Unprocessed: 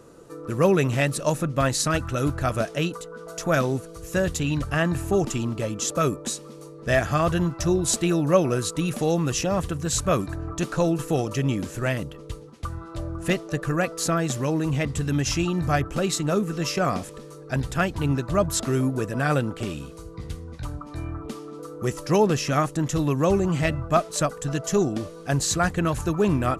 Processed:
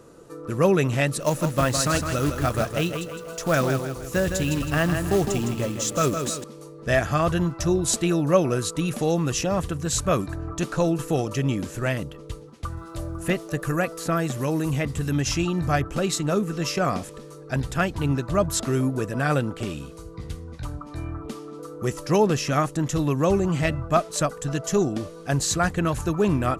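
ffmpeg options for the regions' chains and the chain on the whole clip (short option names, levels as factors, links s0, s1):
-filter_complex "[0:a]asettb=1/sr,asplit=3[s0][s1][s2];[s0]atrim=end=1.214[s3];[s1]atrim=start=1.21:end=6.44,asetpts=PTS-STARTPTS,afade=t=in:d=0.004:c=qsin,afade=t=out:st=5.226:d=0.004:c=qsin,acrusher=bits=4:mode=log:mix=0:aa=0.000001,aecho=1:1:160|320|480|640|800:0.447|0.179|0.0715|0.0286|0.0114,atrim=end_sample=230643[s4];[s2]atrim=start=6.436[s5];[s3][s4]acrossfade=d=0.004:c1=hsin:c2=qsin[s6];[s6][s5]acrossfade=d=0.004:c1=qsin:c2=hsin,asettb=1/sr,asplit=3[s7][s8][s9];[s7]atrim=end=12.774[s10];[s8]atrim=start=12.77:end=15.13,asetpts=PTS-STARTPTS,afade=t=in:d=0.004:c=qsin,afade=t=out:st=2.356:d=0.004:c=qsin,acrossover=split=2800[s11][s12];[s12]acompressor=threshold=0.00501:ratio=4:attack=1:release=60[s13];[s11][s13]amix=inputs=2:normalize=0,aemphasis=mode=production:type=50fm[s14];[s9]atrim=start=15.126[s15];[s10][s14]acrossfade=d=0.004:c1=hsin:c2=qsin[s16];[s16][s15]acrossfade=d=0.004:c1=qsin:c2=hsin"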